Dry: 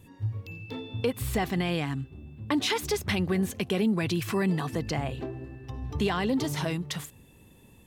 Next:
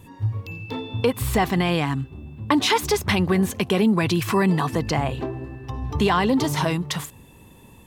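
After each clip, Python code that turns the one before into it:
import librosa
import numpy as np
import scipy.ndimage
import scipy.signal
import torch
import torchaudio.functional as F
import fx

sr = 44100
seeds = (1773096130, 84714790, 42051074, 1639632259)

y = fx.peak_eq(x, sr, hz=1000.0, db=6.5, octaves=0.6)
y = y * 10.0 ** (6.5 / 20.0)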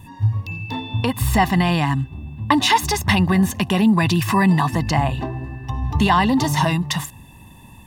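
y = x + 0.66 * np.pad(x, (int(1.1 * sr / 1000.0), 0))[:len(x)]
y = y * 10.0 ** (2.0 / 20.0)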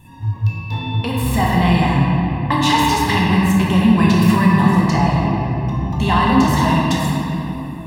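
y = fx.room_shoebox(x, sr, seeds[0], volume_m3=220.0, walls='hard', distance_m=0.89)
y = y * 10.0 ** (-4.5 / 20.0)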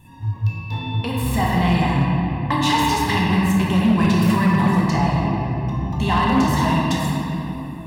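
y = np.clip(10.0 ** (7.5 / 20.0) * x, -1.0, 1.0) / 10.0 ** (7.5 / 20.0)
y = y * 10.0 ** (-3.0 / 20.0)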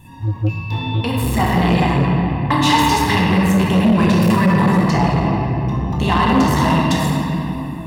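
y = fx.transformer_sat(x, sr, knee_hz=240.0)
y = y * 10.0 ** (5.0 / 20.0)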